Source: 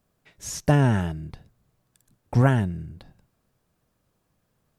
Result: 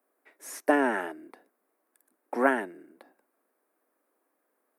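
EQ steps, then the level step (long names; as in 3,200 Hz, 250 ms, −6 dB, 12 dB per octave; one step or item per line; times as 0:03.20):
Butterworth high-pass 270 Hz 48 dB per octave
dynamic equaliser 2,500 Hz, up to +5 dB, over −41 dBFS, Q 0.86
flat-topped bell 4,500 Hz −13 dB
0.0 dB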